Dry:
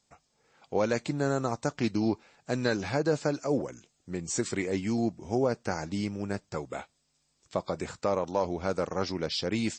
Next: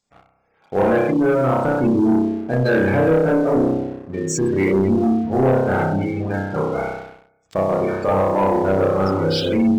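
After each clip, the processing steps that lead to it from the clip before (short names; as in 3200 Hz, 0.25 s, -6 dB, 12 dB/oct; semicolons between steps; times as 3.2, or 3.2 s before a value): spring tank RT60 1.1 s, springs 31 ms, chirp 80 ms, DRR -6 dB; spectral gate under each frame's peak -20 dB strong; sample leveller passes 2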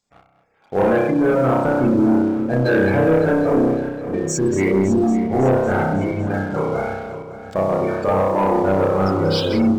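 regenerating reverse delay 0.278 s, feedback 65%, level -11.5 dB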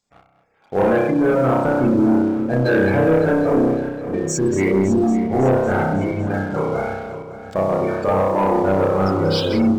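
nothing audible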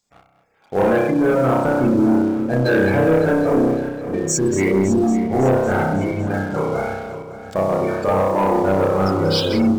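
high shelf 4800 Hz +7 dB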